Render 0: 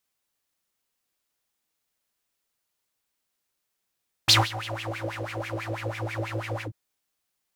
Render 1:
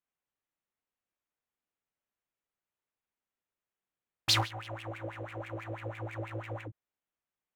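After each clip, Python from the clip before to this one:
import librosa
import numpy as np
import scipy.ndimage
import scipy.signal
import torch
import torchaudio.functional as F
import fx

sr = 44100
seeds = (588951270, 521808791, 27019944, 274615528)

y = fx.wiener(x, sr, points=9)
y = y * 10.0 ** (-7.5 / 20.0)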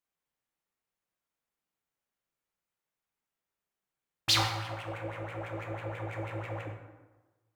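y = fx.rev_plate(x, sr, seeds[0], rt60_s=1.2, hf_ratio=0.6, predelay_ms=0, drr_db=1.5)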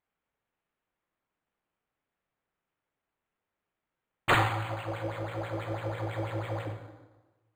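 y = np.interp(np.arange(len(x)), np.arange(len(x))[::8], x[::8])
y = y * 10.0 ** (4.0 / 20.0)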